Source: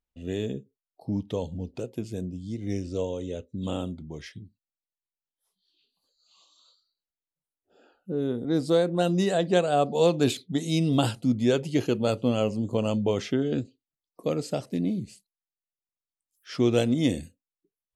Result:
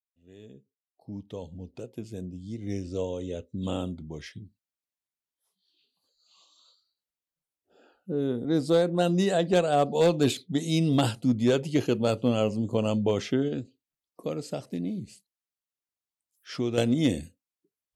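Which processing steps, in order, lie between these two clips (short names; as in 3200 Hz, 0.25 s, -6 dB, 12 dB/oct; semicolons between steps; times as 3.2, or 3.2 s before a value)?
opening faded in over 3.53 s; 13.48–16.78 compressor 1.5:1, threshold -36 dBFS, peak gain reduction 7 dB; one-sided clip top -18 dBFS, bottom -12 dBFS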